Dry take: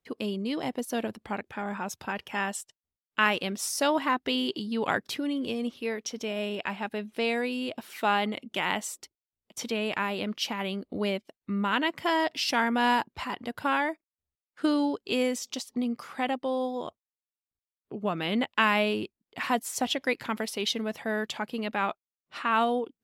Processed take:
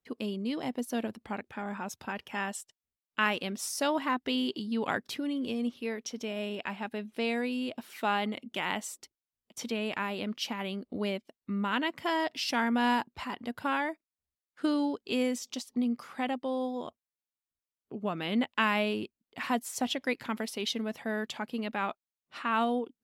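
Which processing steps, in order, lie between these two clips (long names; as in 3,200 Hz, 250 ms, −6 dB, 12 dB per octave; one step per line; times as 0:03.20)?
parametric band 240 Hz +4.5 dB 0.32 octaves
level −4 dB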